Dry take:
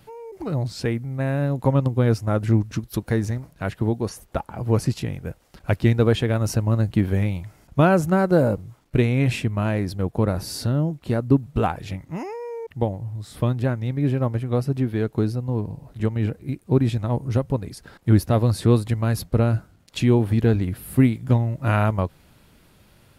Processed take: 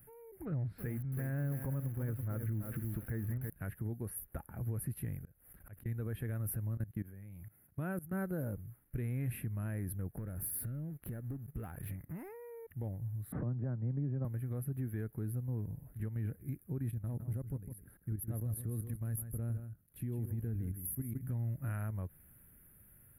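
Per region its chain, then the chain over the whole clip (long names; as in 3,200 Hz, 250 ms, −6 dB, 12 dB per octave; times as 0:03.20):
0:00.45–0:03.50: mu-law and A-law mismatch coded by mu + low-pass filter 2,900 Hz + feedback echo at a low word length 330 ms, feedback 35%, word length 6 bits, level −8 dB
0:05.17–0:05.86: volume swells 525 ms + background raised ahead of every attack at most 98 dB per second
0:06.77–0:08.13: high-pass filter 95 Hz + output level in coarse steps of 20 dB
0:10.17–0:12.29: leveller curve on the samples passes 2 + downward compressor, threshold −29 dBFS
0:13.32–0:14.25: Chebyshev band-pass filter 130–920 Hz + multiband upward and downward compressor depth 100%
0:16.91–0:21.21: parametric band 1,900 Hz −6.5 dB 2.6 octaves + output level in coarse steps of 13 dB + single-tap delay 159 ms −10 dB
whole clip: drawn EQ curve 110 Hz 0 dB, 1,000 Hz −13 dB, 1,700 Hz −2 dB, 3,400 Hz −20 dB, 6,800 Hz −28 dB, 11,000 Hz +14 dB; downward compressor 2 to 1, threshold −25 dBFS; brickwall limiter −21 dBFS; level −8 dB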